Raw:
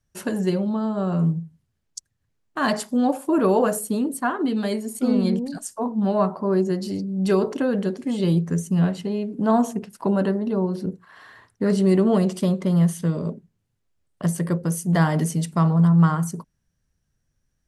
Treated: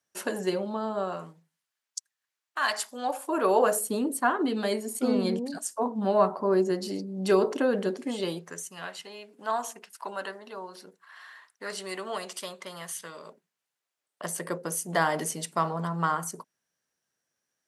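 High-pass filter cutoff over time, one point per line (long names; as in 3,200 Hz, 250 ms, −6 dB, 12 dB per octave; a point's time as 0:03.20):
0:00.96 410 Hz
0:01.38 1,100 Hz
0:02.76 1,100 Hz
0:03.95 320 Hz
0:08.02 320 Hz
0:08.69 1,100 Hz
0:13.28 1,100 Hz
0:14.60 460 Hz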